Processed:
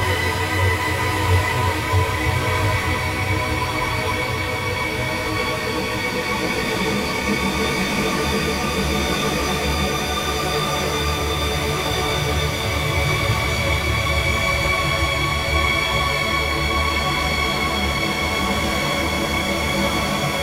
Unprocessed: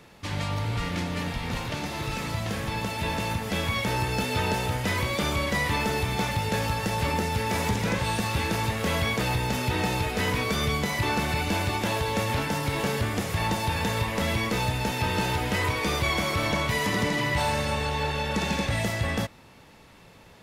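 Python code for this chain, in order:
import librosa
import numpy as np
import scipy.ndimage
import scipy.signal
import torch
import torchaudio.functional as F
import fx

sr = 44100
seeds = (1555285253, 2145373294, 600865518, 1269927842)

y = fx.paulstretch(x, sr, seeds[0], factor=33.0, window_s=0.25, from_s=15.62)
y = fx.detune_double(y, sr, cents=26)
y = y * 10.0 ** (9.0 / 20.0)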